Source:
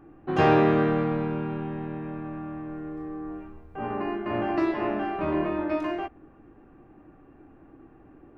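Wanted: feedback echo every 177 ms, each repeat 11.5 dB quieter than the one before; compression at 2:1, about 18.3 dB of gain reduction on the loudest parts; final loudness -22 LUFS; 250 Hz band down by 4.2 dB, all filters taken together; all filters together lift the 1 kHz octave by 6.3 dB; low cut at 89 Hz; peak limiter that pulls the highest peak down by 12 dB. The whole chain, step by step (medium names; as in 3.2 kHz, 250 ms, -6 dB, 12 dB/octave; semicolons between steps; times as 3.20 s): high-pass 89 Hz; peaking EQ 250 Hz -7 dB; peaking EQ 1 kHz +9 dB; compression 2:1, threshold -48 dBFS; peak limiter -34 dBFS; feedback delay 177 ms, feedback 27%, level -11.5 dB; trim +22.5 dB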